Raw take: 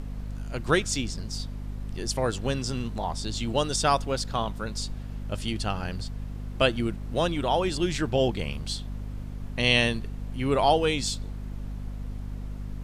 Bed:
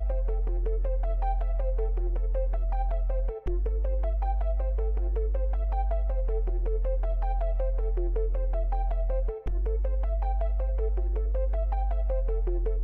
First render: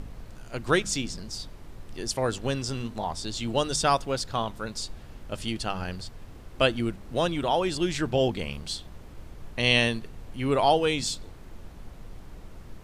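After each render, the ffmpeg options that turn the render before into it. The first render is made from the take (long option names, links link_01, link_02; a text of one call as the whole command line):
ffmpeg -i in.wav -af "bandreject=frequency=50:width_type=h:width=4,bandreject=frequency=100:width_type=h:width=4,bandreject=frequency=150:width_type=h:width=4,bandreject=frequency=200:width_type=h:width=4,bandreject=frequency=250:width_type=h:width=4" out.wav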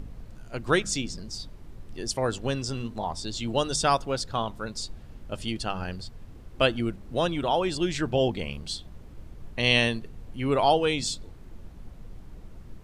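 ffmpeg -i in.wav -af "afftdn=noise_reduction=6:noise_floor=-45" out.wav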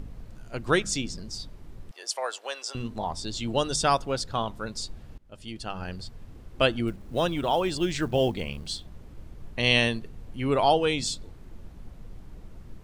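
ffmpeg -i in.wav -filter_complex "[0:a]asettb=1/sr,asplit=3[link_01][link_02][link_03];[link_01]atrim=end=1.914[link_04];[link_02]atrim=start=1.91:end=2.75,asetpts=PTS-STARTPTS,afade=type=in:duration=0.004:curve=qsin,afade=type=out:start_time=0.836:duration=0.004:curve=qsin,highpass=frequency=590:width=0.5412,highpass=frequency=590:width=1.3066[link_05];[link_03]atrim=start=2.746[link_06];[link_04][link_05]acrossfade=duration=0.004:curve1=hsin:curve2=qsin[link_07];[link_07][link_06]acrossfade=duration=0.004:curve1=qsin:curve2=hsin,asettb=1/sr,asplit=3[link_08][link_09][link_10];[link_08]atrim=end=6.874[link_11];[link_09]atrim=start=6.87:end=8.85,asetpts=PTS-STARTPTS,afade=type=in:duration=0.004:curve=qsin,afade=type=out:start_time=1.976:duration=0.004:curve=qsin,acrusher=bits=8:mode=log:mix=0:aa=0.000001[link_12];[link_10]atrim=start=8.846[link_13];[link_11][link_12]acrossfade=duration=0.004:curve1=hsin:curve2=qsin[link_14];[link_14][link_13]acrossfade=duration=0.004:curve1=qsin:curve2=hsin,asplit=2[link_15][link_16];[link_15]atrim=end=5.18,asetpts=PTS-STARTPTS,afade=type=out:start_time=5.176:duration=0.004:curve=hsin:silence=0.0749894[link_17];[link_16]atrim=start=5.18,asetpts=PTS-STARTPTS,afade=type=in:duration=0.88:silence=0.0749894[link_18];[link_17][link_18]concat=n=2:v=0:a=1" out.wav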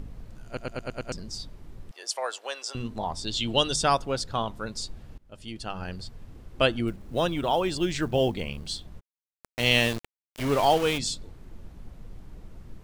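ffmpeg -i in.wav -filter_complex "[0:a]asettb=1/sr,asplit=3[link_01][link_02][link_03];[link_01]atrim=end=3.274[link_04];[link_02]atrim=start=3.27:end=3.73,asetpts=PTS-STARTPTS,afade=type=in:duration=0.004:curve=qsin,afade=type=out:start_time=0.456:duration=0.004:curve=qsin,equalizer=frequency=3200:width=2:gain=10.5[link_05];[link_03]atrim=start=3.726[link_06];[link_04][link_05]acrossfade=duration=0.004:curve1=hsin:curve2=qsin[link_07];[link_07][link_06]acrossfade=duration=0.004:curve1=qsin:curve2=hsin,asplit=3[link_08][link_09][link_10];[link_08]afade=type=out:start_time=8.99:duration=0.02[link_11];[link_09]aeval=exprs='val(0)*gte(abs(val(0)),0.0335)':channel_layout=same,afade=type=in:start_time=8.99:duration=0.02,afade=type=out:start_time=10.97:duration=0.02[link_12];[link_10]afade=type=in:start_time=10.97:duration=0.02[link_13];[link_11][link_12][link_13]amix=inputs=3:normalize=0,asplit=7[link_14][link_15][link_16][link_17][link_18][link_19][link_20];[link_14]atrim=end=0.572[link_21];[link_15]atrim=start=0.458:end=0.572[link_22];[link_16]atrim=start=0.458:end=0.572[link_23];[link_17]atrim=start=0.458:end=0.572[link_24];[link_18]atrim=start=0.458:end=0.572[link_25];[link_19]atrim=start=0.458:end=0.572[link_26];[link_20]atrim=start=1.118[link_27];[link_21][link_22]acrossfade=duration=0.004:curve1=hsin:curve2=hsin[link_28];[link_28][link_23]acrossfade=duration=0.004:curve1=hsin:curve2=hsin[link_29];[link_29][link_24]acrossfade=duration=0.004:curve1=hsin:curve2=hsin[link_30];[link_30][link_25]acrossfade=duration=0.004:curve1=hsin:curve2=hsin[link_31];[link_31][link_26]acrossfade=duration=0.004:curve1=hsin:curve2=hsin[link_32];[link_32][link_27]acrossfade=duration=0.004:curve1=hsin:curve2=hsin" out.wav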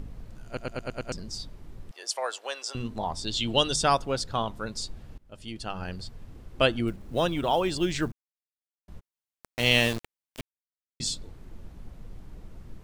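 ffmpeg -i in.wav -filter_complex "[0:a]asplit=5[link_01][link_02][link_03][link_04][link_05];[link_01]atrim=end=8.12,asetpts=PTS-STARTPTS,afade=type=out:start_time=8.116:duration=0.004:curve=hsin[link_06];[link_02]atrim=start=8.12:end=8.88,asetpts=PTS-STARTPTS,volume=0[link_07];[link_03]atrim=start=8.88:end=10.41,asetpts=PTS-STARTPTS,afade=type=in:duration=0.004:curve=hsin,afade=type=out:start_time=1.526:duration=0.004:curve=hsin[link_08];[link_04]atrim=start=10.41:end=11,asetpts=PTS-STARTPTS,volume=0[link_09];[link_05]atrim=start=11,asetpts=PTS-STARTPTS,afade=type=in:duration=0.004:curve=hsin[link_10];[link_06][link_07][link_08][link_09][link_10]concat=n=5:v=0:a=1" out.wav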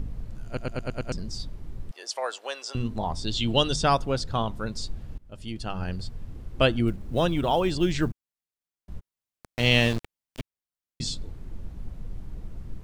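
ffmpeg -i in.wav -filter_complex "[0:a]acrossover=split=6800[link_01][link_02];[link_02]acompressor=threshold=-47dB:ratio=4:attack=1:release=60[link_03];[link_01][link_03]amix=inputs=2:normalize=0,lowshelf=frequency=240:gain=7.5" out.wav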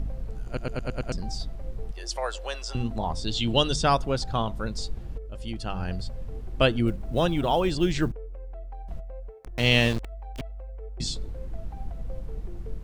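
ffmpeg -i in.wav -i bed.wav -filter_complex "[1:a]volume=-11.5dB[link_01];[0:a][link_01]amix=inputs=2:normalize=0" out.wav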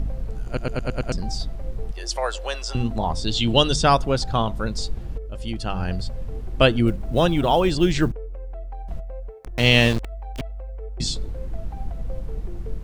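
ffmpeg -i in.wav -af "volume=5dB,alimiter=limit=-1dB:level=0:latency=1" out.wav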